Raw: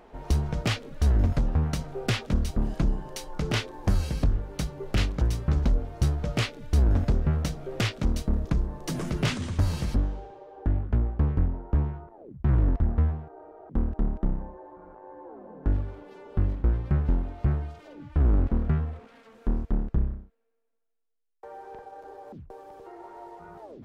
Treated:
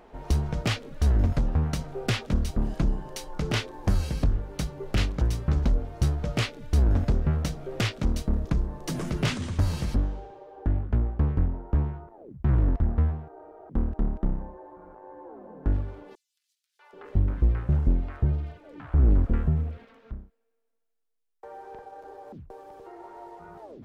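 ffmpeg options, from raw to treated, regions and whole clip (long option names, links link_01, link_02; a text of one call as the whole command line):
ffmpeg -i in.wav -filter_complex "[0:a]asettb=1/sr,asplit=3[link_01][link_02][link_03];[link_01]atrim=end=16.154[link_04];[link_02]atrim=start=16.15:end=20.11,asetpts=PTS-STARTPTS,afade=type=in:duration=0.004:curve=qsin,afade=type=out:start_time=3.956:duration=0.004:curve=qsin,acrossover=split=810|5100[link_05][link_06][link_07];[link_06]adelay=640[link_08];[link_05]adelay=780[link_09];[link_09][link_08][link_07]amix=inputs=3:normalize=0,atrim=end_sample=174636,aphaser=in_gain=1:out_gain=1:delay=2.5:decay=0.22:speed=1.7:type=triangular[link_10];[link_03]atrim=start=20.106[link_11];[link_04][link_10]acrossfade=duration=0.004:curve1=hsin:curve2=qsin[link_12];[link_12][link_11]acrossfade=duration=0.004:curve1=qsin:curve2=hsin" out.wav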